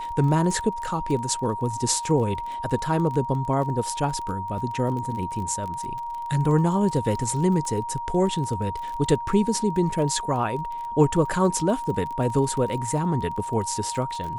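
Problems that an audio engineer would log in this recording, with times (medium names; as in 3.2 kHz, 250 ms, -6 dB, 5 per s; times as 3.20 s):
crackle 26 per s -31 dBFS
whine 940 Hz -29 dBFS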